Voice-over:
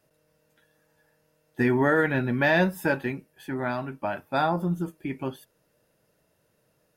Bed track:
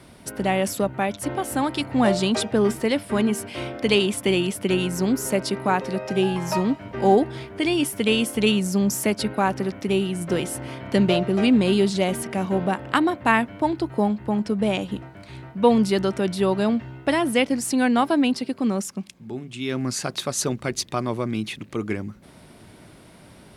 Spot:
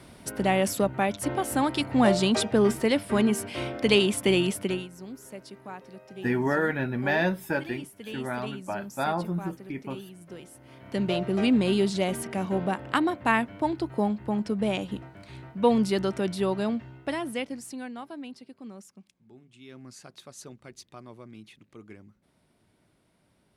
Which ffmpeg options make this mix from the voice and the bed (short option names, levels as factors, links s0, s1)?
-filter_complex "[0:a]adelay=4650,volume=0.668[s0];[1:a]volume=4.73,afade=t=out:st=4.52:d=0.36:silence=0.125893,afade=t=in:st=10.63:d=0.73:silence=0.177828,afade=t=out:st=16.26:d=1.68:silence=0.16788[s1];[s0][s1]amix=inputs=2:normalize=0"